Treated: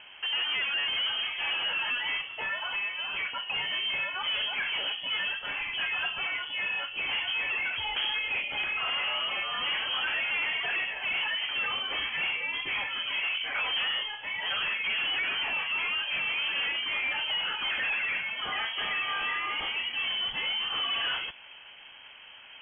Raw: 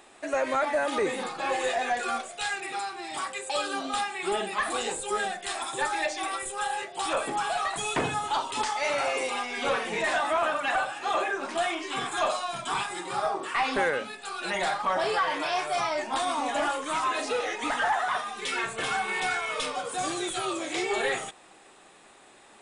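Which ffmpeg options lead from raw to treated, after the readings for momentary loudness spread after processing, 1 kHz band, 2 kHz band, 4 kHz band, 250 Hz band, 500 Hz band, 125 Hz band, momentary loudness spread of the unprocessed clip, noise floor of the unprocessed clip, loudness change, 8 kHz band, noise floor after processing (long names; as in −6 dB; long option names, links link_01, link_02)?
4 LU, −11.0 dB, +2.0 dB, +7.5 dB, −16.0 dB, −17.5 dB, can't be measured, 5 LU, −54 dBFS, 0.0 dB, below −40 dB, −49 dBFS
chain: -filter_complex "[0:a]equalizer=frequency=180:width_type=o:width=1.4:gain=11.5,asplit=2[link_01][link_02];[link_02]acompressor=threshold=-35dB:ratio=6,volume=0dB[link_03];[link_01][link_03]amix=inputs=2:normalize=0,asoftclip=type=hard:threshold=-25dB,lowpass=frequency=2900:width_type=q:width=0.5098,lowpass=frequency=2900:width_type=q:width=0.6013,lowpass=frequency=2900:width_type=q:width=0.9,lowpass=frequency=2900:width_type=q:width=2.563,afreqshift=-3400,volume=-2.5dB"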